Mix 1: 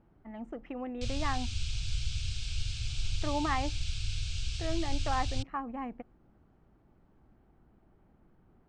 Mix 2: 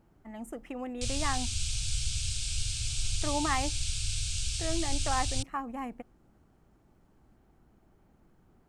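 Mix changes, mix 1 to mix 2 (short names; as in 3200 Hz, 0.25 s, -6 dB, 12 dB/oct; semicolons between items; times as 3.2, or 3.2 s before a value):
speech: remove air absorption 110 m; master: remove air absorption 150 m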